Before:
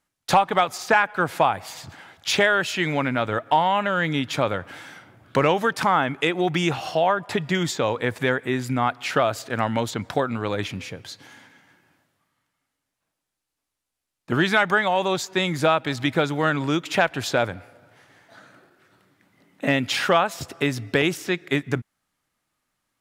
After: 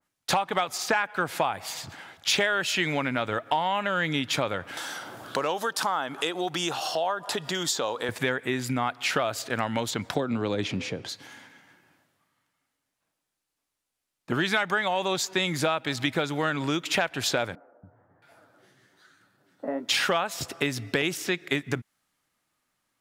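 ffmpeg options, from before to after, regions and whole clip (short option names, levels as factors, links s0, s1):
-filter_complex "[0:a]asettb=1/sr,asplit=3[s0][s1][s2];[s0]atrim=end=4.774[s3];[s1]atrim=start=4.77:end=8.09,asetpts=PTS-STARTPTS,afade=t=in:d=0.004:c=qsin,afade=t=out:st=3.316:d=0.004:c=qsin,highpass=f=630:p=1,equalizer=f=2200:t=o:w=0.71:g=-12,acompressor=mode=upward:threshold=0.0562:ratio=2.5:attack=3.2:release=140:knee=2.83:detection=peak[s4];[s2]atrim=start=8.086[s5];[s3][s4]acrossfade=d=0.004:c1=hsin:c2=qsin[s6];[s6][s5]acrossfade=d=0.004:c1=qsin:c2=hsin,asettb=1/sr,asplit=3[s7][s8][s9];[s7]atrim=end=10.154[s10];[s8]atrim=start=10.15:end=11.09,asetpts=PTS-STARTPTS,afade=t=in:d=0.004:c=qsin,afade=t=out:st=0.936:d=0.004:c=qsin,lowpass=7100,equalizer=f=440:w=0.43:g=10,acrossover=split=270|3000[s11][s12][s13];[s12]acompressor=threshold=0.00891:ratio=1.5:attack=3.2:release=140:knee=2.83:detection=peak[s14];[s11][s14][s13]amix=inputs=3:normalize=0[s15];[s9]atrim=start=11.086[s16];[s10][s15]acrossfade=d=0.004:c1=hsin:c2=qsin[s17];[s17][s16]acrossfade=d=0.004:c1=qsin:c2=hsin,asettb=1/sr,asplit=3[s18][s19][s20];[s18]atrim=end=17.554[s21];[s19]atrim=start=17.55:end=19.89,asetpts=PTS-STARTPTS,afade=t=in:d=0.004:c=qsin,afade=t=out:st=2.336:d=0.004:c=qsin,flanger=delay=5.8:depth=7.4:regen=47:speed=1.2:shape=triangular,equalizer=f=2400:t=o:w=0.61:g=-6.5,acrossover=split=240|1300[s22][s23][s24];[s22]adelay=280[s25];[s24]adelay=670[s26];[s25][s23][s26]amix=inputs=3:normalize=0,atrim=end_sample=103194[s27];[s20]atrim=start=19.886[s28];[s21][s27]acrossfade=d=0.004:c1=hsin:c2=qsin[s29];[s29][s28]acrossfade=d=0.004:c1=qsin:c2=hsin,lowshelf=f=99:g=-6,acompressor=threshold=0.0562:ratio=2.5,adynamicequalizer=threshold=0.0126:dfrequency=2000:dqfactor=0.7:tfrequency=2000:tqfactor=0.7:attack=5:release=100:ratio=0.375:range=2:mode=boostabove:tftype=highshelf"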